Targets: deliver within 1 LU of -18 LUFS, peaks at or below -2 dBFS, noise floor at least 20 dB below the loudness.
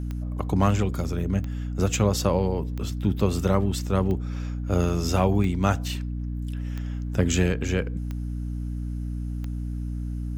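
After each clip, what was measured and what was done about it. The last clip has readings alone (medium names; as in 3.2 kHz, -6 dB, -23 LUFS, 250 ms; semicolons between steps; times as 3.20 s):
clicks found 8; hum 60 Hz; highest harmonic 300 Hz; hum level -27 dBFS; loudness -26.5 LUFS; peak level -8.0 dBFS; loudness target -18.0 LUFS
-> de-click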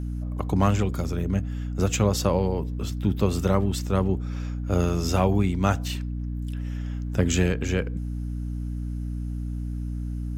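clicks found 0; hum 60 Hz; highest harmonic 300 Hz; hum level -27 dBFS
-> de-hum 60 Hz, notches 5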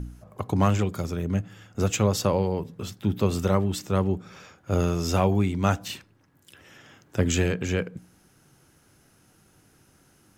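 hum not found; loudness -26.0 LUFS; peak level -8.0 dBFS; loudness target -18.0 LUFS
-> trim +8 dB; peak limiter -2 dBFS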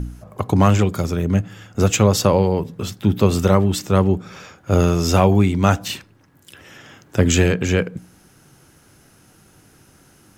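loudness -18.0 LUFS; peak level -2.0 dBFS; noise floor -53 dBFS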